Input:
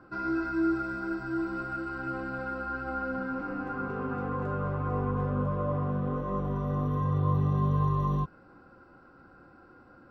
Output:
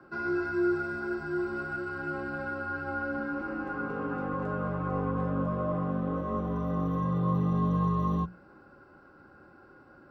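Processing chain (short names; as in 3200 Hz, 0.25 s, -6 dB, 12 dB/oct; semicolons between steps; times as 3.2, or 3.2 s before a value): frequency shift +25 Hz; notches 60/120/180 Hz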